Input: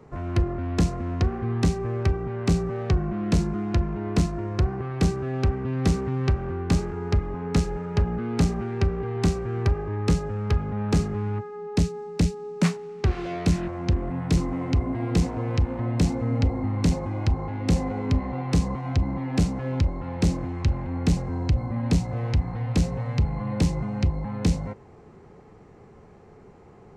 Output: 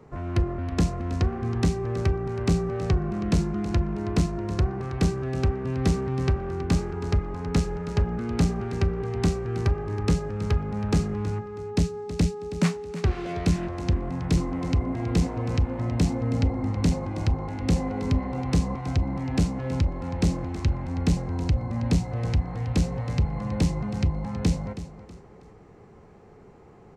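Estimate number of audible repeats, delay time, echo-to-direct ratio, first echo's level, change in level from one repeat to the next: 3, 0.322 s, -13.0 dB, -13.5 dB, -9.5 dB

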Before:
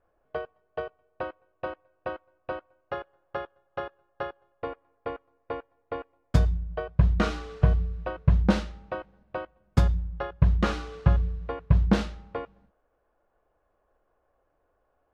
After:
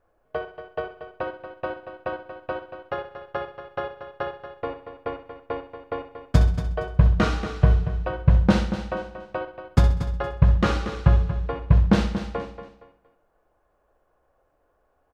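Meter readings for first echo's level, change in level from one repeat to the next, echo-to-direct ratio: -10.5 dB, no steady repeat, -6.5 dB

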